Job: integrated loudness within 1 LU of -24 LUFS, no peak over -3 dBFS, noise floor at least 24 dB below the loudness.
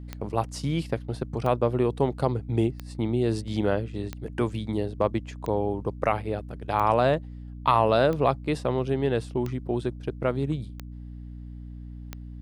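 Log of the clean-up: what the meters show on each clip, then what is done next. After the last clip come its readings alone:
clicks found 10; hum 60 Hz; highest harmonic 300 Hz; hum level -37 dBFS; loudness -27.0 LUFS; peak level -9.0 dBFS; loudness target -24.0 LUFS
-> de-click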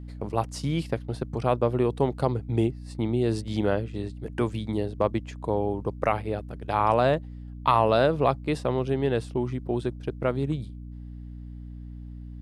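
clicks found 0; hum 60 Hz; highest harmonic 300 Hz; hum level -37 dBFS
-> hum notches 60/120/180/240/300 Hz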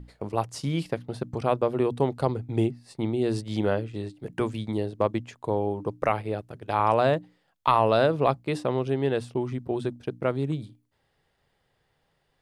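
hum not found; loudness -27.5 LUFS; peak level -9.0 dBFS; loudness target -24.0 LUFS
-> trim +3.5 dB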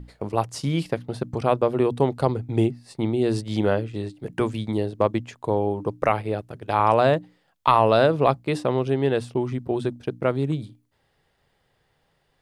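loudness -24.0 LUFS; peak level -5.5 dBFS; noise floor -69 dBFS

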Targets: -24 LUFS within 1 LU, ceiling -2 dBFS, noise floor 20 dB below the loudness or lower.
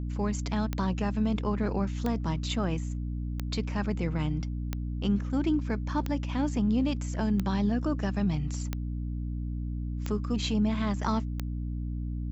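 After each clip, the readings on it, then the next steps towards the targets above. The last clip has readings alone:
clicks found 9; hum 60 Hz; highest harmonic 300 Hz; hum level -30 dBFS; loudness -30.5 LUFS; peak level -15.0 dBFS; loudness target -24.0 LUFS
-> de-click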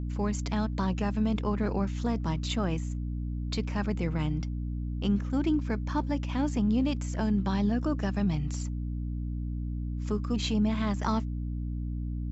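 clicks found 0; hum 60 Hz; highest harmonic 300 Hz; hum level -30 dBFS
-> de-hum 60 Hz, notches 5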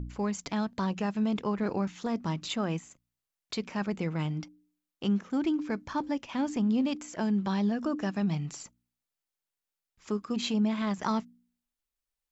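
hum not found; loudness -31.5 LUFS; peak level -17.5 dBFS; loudness target -24.0 LUFS
-> trim +7.5 dB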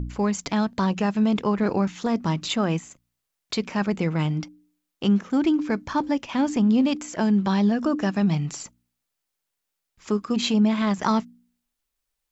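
loudness -24.0 LUFS; peak level -10.0 dBFS; noise floor -82 dBFS

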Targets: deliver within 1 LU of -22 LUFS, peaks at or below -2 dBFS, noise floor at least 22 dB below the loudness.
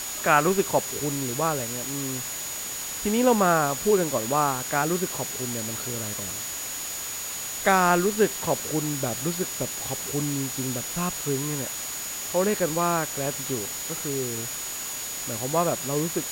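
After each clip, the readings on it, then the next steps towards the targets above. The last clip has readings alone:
steady tone 6.8 kHz; tone level -34 dBFS; noise floor -33 dBFS; noise floor target -48 dBFS; loudness -25.5 LUFS; peak level -5.0 dBFS; loudness target -22.0 LUFS
-> band-stop 6.8 kHz, Q 30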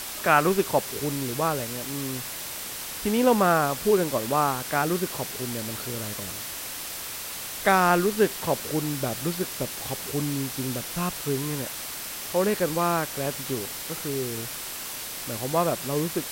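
steady tone not found; noise floor -36 dBFS; noise floor target -49 dBFS
-> noise reduction 13 dB, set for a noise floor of -36 dBFS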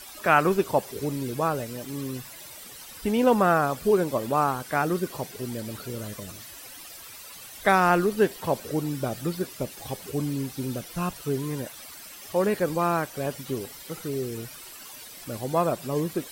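noise floor -44 dBFS; noise floor target -49 dBFS
-> noise reduction 6 dB, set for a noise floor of -44 dBFS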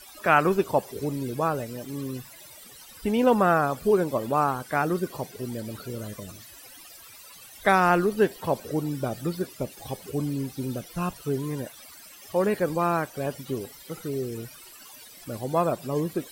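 noise floor -48 dBFS; noise floor target -49 dBFS
-> noise reduction 6 dB, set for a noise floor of -48 dBFS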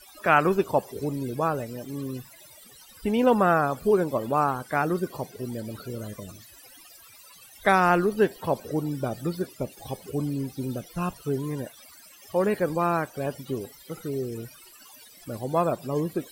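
noise floor -51 dBFS; loudness -26.5 LUFS; peak level -5.5 dBFS; loudness target -22.0 LUFS
-> trim +4.5 dB; peak limiter -2 dBFS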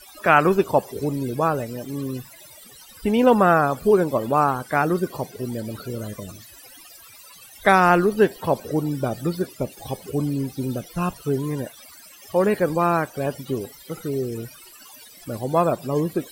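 loudness -22.5 LUFS; peak level -2.0 dBFS; noise floor -46 dBFS

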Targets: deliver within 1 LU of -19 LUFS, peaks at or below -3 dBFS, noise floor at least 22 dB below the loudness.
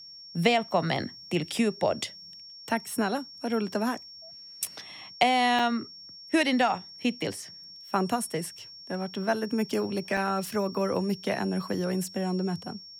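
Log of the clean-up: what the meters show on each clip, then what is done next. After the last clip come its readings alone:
dropouts 2; longest dropout 4.4 ms; steady tone 5.5 kHz; tone level -44 dBFS; loudness -28.5 LUFS; peak level -8.5 dBFS; loudness target -19.0 LUFS
-> interpolate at 5.59/10.17 s, 4.4 ms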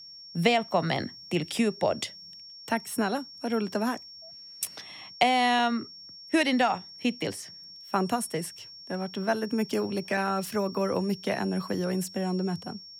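dropouts 0; steady tone 5.5 kHz; tone level -44 dBFS
-> band-stop 5.5 kHz, Q 30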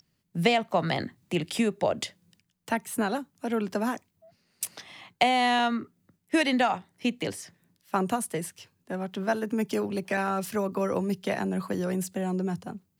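steady tone not found; loudness -29.0 LUFS; peak level -8.5 dBFS; loudness target -19.0 LUFS
-> trim +10 dB; peak limiter -3 dBFS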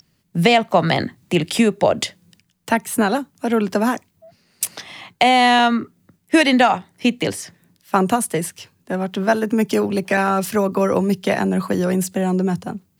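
loudness -19.0 LUFS; peak level -3.0 dBFS; noise floor -65 dBFS

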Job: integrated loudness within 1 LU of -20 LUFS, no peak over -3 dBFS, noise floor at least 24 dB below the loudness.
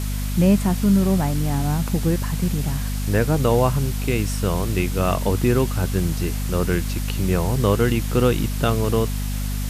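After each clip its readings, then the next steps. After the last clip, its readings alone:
hum 50 Hz; highest harmonic 250 Hz; hum level -22 dBFS; noise floor -25 dBFS; noise floor target -46 dBFS; loudness -21.5 LUFS; peak level -4.5 dBFS; loudness target -20.0 LUFS
-> hum notches 50/100/150/200/250 Hz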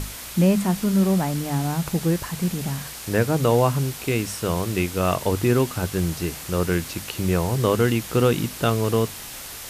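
hum not found; noise floor -37 dBFS; noise floor target -47 dBFS
-> noise reduction 10 dB, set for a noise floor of -37 dBFS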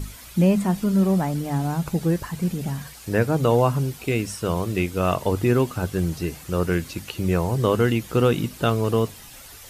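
noise floor -43 dBFS; noise floor target -47 dBFS
-> noise reduction 6 dB, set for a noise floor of -43 dBFS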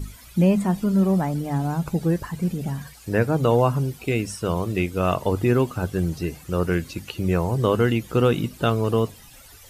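noise floor -47 dBFS; loudness -23.0 LUFS; peak level -6.5 dBFS; loudness target -20.0 LUFS
-> trim +3 dB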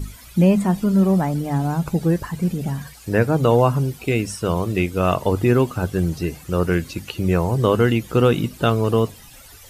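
loudness -20.0 LUFS; peak level -3.5 dBFS; noise floor -44 dBFS

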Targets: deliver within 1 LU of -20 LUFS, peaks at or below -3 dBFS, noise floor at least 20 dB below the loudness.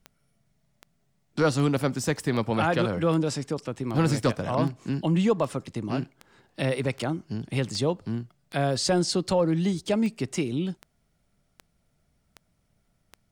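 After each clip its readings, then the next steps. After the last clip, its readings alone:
clicks found 18; loudness -27.0 LUFS; peak level -13.0 dBFS; loudness target -20.0 LUFS
-> de-click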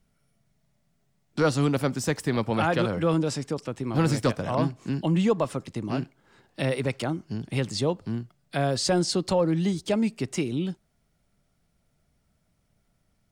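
clicks found 0; loudness -27.0 LUFS; peak level -13.0 dBFS; loudness target -20.0 LUFS
-> trim +7 dB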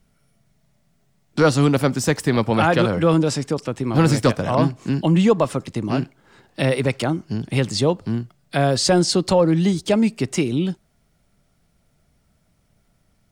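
loudness -20.0 LUFS; peak level -6.0 dBFS; noise floor -64 dBFS

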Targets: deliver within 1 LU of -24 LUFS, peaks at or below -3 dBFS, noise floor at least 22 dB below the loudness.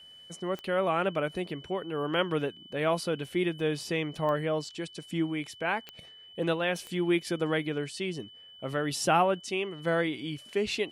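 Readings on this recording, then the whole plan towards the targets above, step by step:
clicks found 4; steady tone 3 kHz; tone level -49 dBFS; loudness -30.5 LUFS; peak level -12.0 dBFS; loudness target -24.0 LUFS
-> de-click; band-stop 3 kHz, Q 30; trim +6.5 dB

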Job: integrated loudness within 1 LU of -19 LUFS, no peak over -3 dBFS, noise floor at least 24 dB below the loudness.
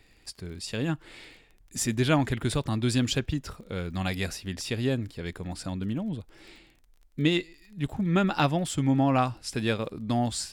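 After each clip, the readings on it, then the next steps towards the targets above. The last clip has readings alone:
tick rate 30 per s; loudness -28.5 LUFS; peak level -10.0 dBFS; loudness target -19.0 LUFS
-> de-click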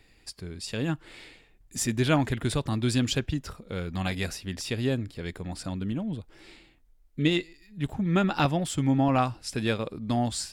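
tick rate 0.47 per s; loudness -28.5 LUFS; peak level -11.0 dBFS; loudness target -19.0 LUFS
-> trim +9.5 dB; peak limiter -3 dBFS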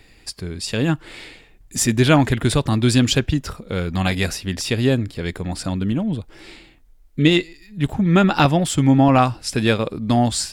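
loudness -19.0 LUFS; peak level -3.0 dBFS; noise floor -51 dBFS

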